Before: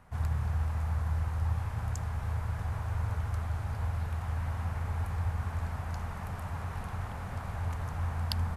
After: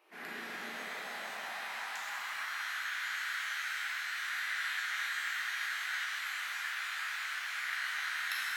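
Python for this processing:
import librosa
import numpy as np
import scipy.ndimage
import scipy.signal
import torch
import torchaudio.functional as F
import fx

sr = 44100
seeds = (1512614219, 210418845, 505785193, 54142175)

y = fx.graphic_eq(x, sr, hz=(250, 500, 1000, 2000, 8000), db=(4, -12, -11, 9, -10))
y = fx.spec_gate(y, sr, threshold_db=-20, keep='weak')
y = fx.filter_sweep_highpass(y, sr, from_hz=390.0, to_hz=1500.0, start_s=0.5, end_s=2.79, q=2.3)
y = fx.rev_shimmer(y, sr, seeds[0], rt60_s=2.0, semitones=12, shimmer_db=-8, drr_db=-5.5)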